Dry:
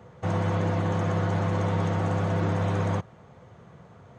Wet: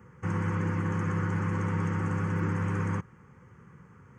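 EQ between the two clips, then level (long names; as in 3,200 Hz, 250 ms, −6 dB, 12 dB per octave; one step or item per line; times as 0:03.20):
parametric band 100 Hz −3.5 dB
phaser with its sweep stopped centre 1,600 Hz, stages 4
0.0 dB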